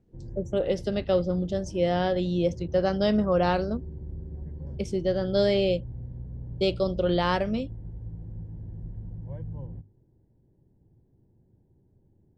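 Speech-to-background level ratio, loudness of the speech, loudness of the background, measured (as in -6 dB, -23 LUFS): 13.5 dB, -26.5 LUFS, -40.0 LUFS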